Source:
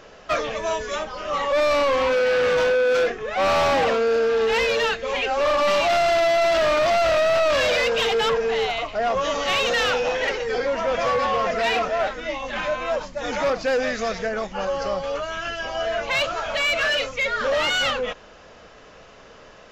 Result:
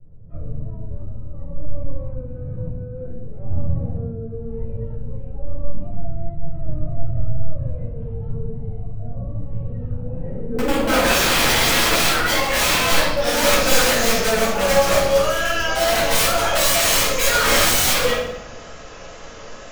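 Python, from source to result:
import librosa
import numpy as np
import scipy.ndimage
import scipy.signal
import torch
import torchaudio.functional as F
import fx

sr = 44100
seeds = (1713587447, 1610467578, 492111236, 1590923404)

y = fx.filter_sweep_lowpass(x, sr, from_hz=120.0, to_hz=7100.0, start_s=9.9, end_s=13.5, q=3.7)
y = fx.vibrato(y, sr, rate_hz=2.1, depth_cents=29.0)
y = (np.mod(10.0 ** (19.0 / 20.0) * y + 1.0, 2.0) - 1.0) / 10.0 ** (19.0 / 20.0)
y = fx.room_shoebox(y, sr, seeds[0], volume_m3=290.0, walls='mixed', distance_m=4.8)
y = y * 10.0 ** (-5.5 / 20.0)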